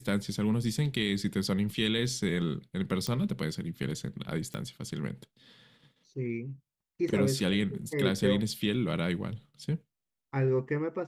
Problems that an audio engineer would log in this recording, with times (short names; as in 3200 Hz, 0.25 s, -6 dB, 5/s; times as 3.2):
3.07 pop -18 dBFS
4.54 pop